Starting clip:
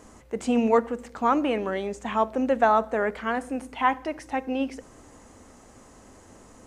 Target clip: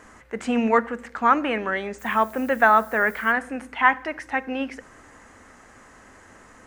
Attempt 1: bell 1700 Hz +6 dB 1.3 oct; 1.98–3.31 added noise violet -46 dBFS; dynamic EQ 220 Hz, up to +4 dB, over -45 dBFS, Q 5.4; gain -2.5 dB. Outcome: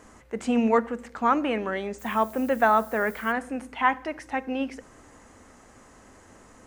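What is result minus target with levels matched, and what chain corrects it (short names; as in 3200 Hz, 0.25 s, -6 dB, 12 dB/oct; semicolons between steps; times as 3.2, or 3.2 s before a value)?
2000 Hz band -4.0 dB
bell 1700 Hz +14 dB 1.3 oct; 1.98–3.31 added noise violet -46 dBFS; dynamic EQ 220 Hz, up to +4 dB, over -45 dBFS, Q 5.4; gain -2.5 dB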